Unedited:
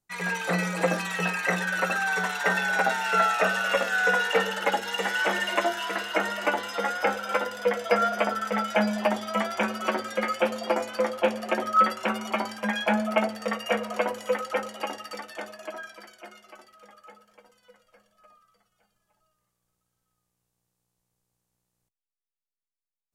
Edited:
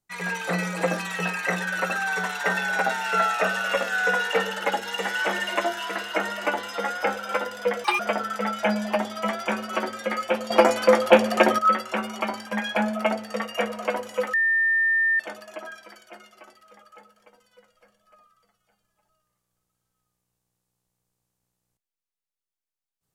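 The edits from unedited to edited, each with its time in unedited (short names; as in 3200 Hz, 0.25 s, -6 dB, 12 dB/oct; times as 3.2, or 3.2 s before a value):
7.84–8.11 speed 174%
10.62–11.7 gain +9 dB
14.45–15.31 bleep 1800 Hz -18 dBFS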